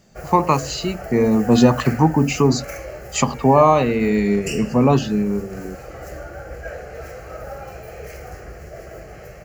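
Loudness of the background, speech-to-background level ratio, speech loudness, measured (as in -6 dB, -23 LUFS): -34.5 LUFS, 16.5 dB, -18.0 LUFS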